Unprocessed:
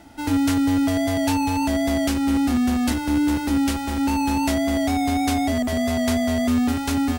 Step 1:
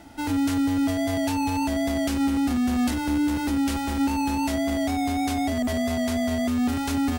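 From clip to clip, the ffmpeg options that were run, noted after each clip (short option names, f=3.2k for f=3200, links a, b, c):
-af "alimiter=limit=-17.5dB:level=0:latency=1:release=31"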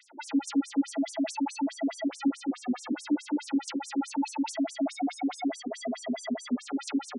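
-af "afftfilt=real='re*between(b*sr/1024,280*pow(7900/280,0.5+0.5*sin(2*PI*4.7*pts/sr))/1.41,280*pow(7900/280,0.5+0.5*sin(2*PI*4.7*pts/sr))*1.41)':imag='im*between(b*sr/1024,280*pow(7900/280,0.5+0.5*sin(2*PI*4.7*pts/sr))/1.41,280*pow(7900/280,0.5+0.5*sin(2*PI*4.7*pts/sr))*1.41)':win_size=1024:overlap=0.75,volume=1.5dB"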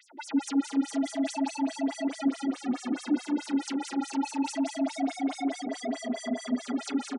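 -af "aecho=1:1:168|173|456:0.1|0.422|0.299"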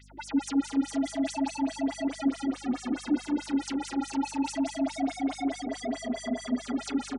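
-af "aeval=exprs='val(0)+0.002*(sin(2*PI*50*n/s)+sin(2*PI*2*50*n/s)/2+sin(2*PI*3*50*n/s)/3+sin(2*PI*4*50*n/s)/4+sin(2*PI*5*50*n/s)/5)':c=same"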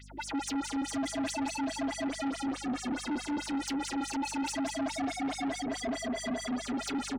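-af "asoftclip=type=tanh:threshold=-33dB,volume=3.5dB"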